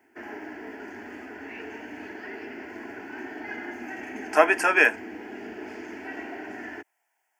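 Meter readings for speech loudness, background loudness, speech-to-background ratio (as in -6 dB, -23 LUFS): -20.5 LUFS, -38.5 LUFS, 18.0 dB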